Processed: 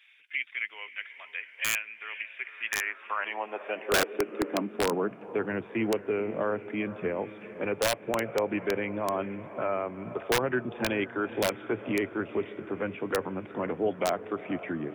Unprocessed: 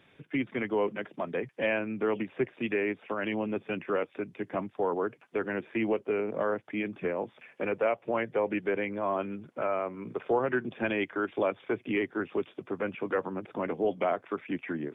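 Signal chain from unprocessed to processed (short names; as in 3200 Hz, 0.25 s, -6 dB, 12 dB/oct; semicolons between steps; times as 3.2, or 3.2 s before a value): diffused feedback echo 0.47 s, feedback 54%, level -14 dB; high-pass sweep 2300 Hz -> 76 Hz, 2.37–5.84; wrapped overs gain 18 dB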